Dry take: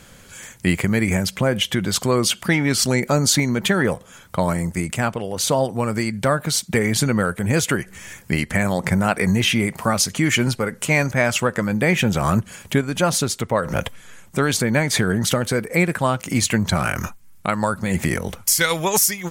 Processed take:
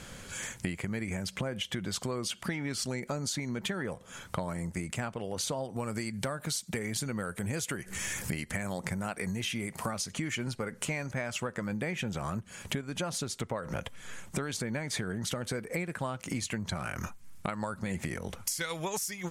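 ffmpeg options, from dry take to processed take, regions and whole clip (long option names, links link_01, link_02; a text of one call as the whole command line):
ffmpeg -i in.wav -filter_complex "[0:a]asettb=1/sr,asplit=3[link_01][link_02][link_03];[link_01]atrim=end=5.764[link_04];[link_02]atrim=start=5.76:end=9.91,asetpts=PTS-STARTPTS,afade=type=in:duration=0.004:curve=qsin,afade=type=out:start_time=4.146:duration=0.004:curve=qsin,highshelf=frequency=6300:gain=8.5,acompressor=mode=upward:threshold=-23dB:ratio=2.5:attack=3.2:release=140:knee=2.83:detection=peak[link_05];[link_03]atrim=start=9.906[link_06];[link_04][link_05]acrossfade=duration=0.004:curve1=hsin:curve2=qsin[link_07];[link_07][link_06]acrossfade=duration=0.004:curve1=qsin:curve2=hsin,lowpass=11000,acompressor=threshold=-31dB:ratio=12" out.wav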